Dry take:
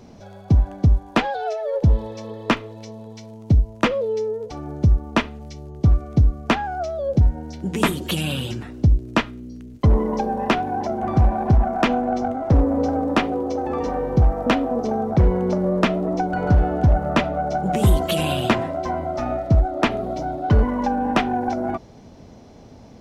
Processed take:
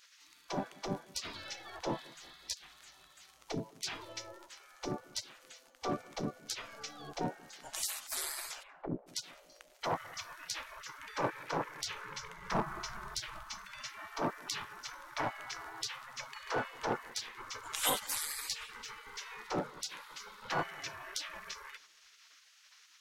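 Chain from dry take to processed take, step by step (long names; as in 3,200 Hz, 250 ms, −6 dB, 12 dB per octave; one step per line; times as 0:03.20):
parametric band 60 Hz +6.5 dB 0.23 octaves
gate on every frequency bin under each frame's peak −30 dB weak
0:08.62–0:09.06: low-pass filter 2,700 Hz → 1,000 Hz 24 dB per octave
0:12.05–0:13.44: low-shelf EQ 270 Hz +10 dB
tape delay 188 ms, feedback 59%, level −21 dB, low-pass 1,100 Hz
level +2.5 dB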